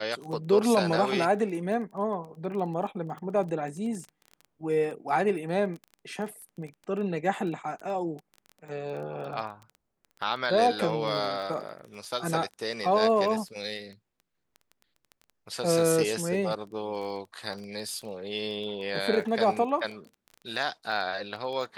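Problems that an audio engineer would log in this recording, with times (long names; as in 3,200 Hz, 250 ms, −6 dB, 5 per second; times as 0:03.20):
surface crackle 16 per second −36 dBFS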